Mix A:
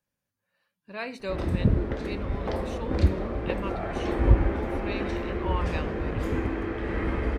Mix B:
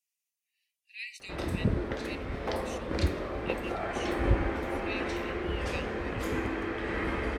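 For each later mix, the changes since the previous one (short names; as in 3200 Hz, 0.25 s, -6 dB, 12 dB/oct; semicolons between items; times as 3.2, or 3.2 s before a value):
speech: add rippled Chebyshev high-pass 1900 Hz, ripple 6 dB; master: add tilt +2 dB/oct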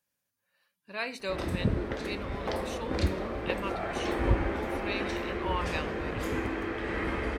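speech: remove rippled Chebyshev high-pass 1900 Hz, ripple 6 dB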